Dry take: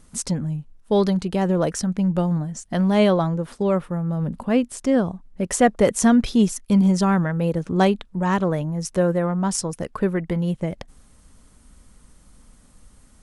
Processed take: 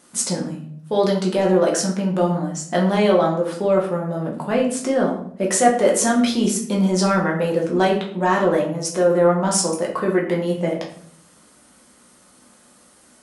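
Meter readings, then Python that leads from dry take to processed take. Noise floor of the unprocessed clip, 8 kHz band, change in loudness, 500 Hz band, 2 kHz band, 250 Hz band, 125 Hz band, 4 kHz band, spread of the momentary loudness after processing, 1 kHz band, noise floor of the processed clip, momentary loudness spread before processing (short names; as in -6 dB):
-54 dBFS, +6.0 dB, +2.0 dB, +4.5 dB, +4.0 dB, -1.0 dB, -2.5 dB, +5.0 dB, 8 LU, +4.0 dB, -53 dBFS, 9 LU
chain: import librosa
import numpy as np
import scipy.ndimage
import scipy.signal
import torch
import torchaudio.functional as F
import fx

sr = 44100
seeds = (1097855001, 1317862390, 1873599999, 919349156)

p1 = scipy.signal.sosfilt(scipy.signal.butter(2, 300.0, 'highpass', fs=sr, output='sos'), x)
p2 = fx.over_compress(p1, sr, threshold_db=-25.0, ratio=-1.0)
p3 = p1 + F.gain(torch.from_numpy(p2), 0.0).numpy()
p4 = fx.room_shoebox(p3, sr, seeds[0], volume_m3=83.0, walls='mixed', distance_m=0.93)
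y = F.gain(torch.from_numpy(p4), -4.0).numpy()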